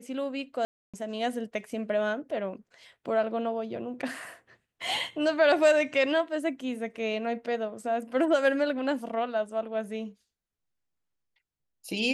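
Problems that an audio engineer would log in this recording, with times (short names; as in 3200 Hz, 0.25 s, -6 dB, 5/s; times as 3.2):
0.65–0.94 gap 0.286 s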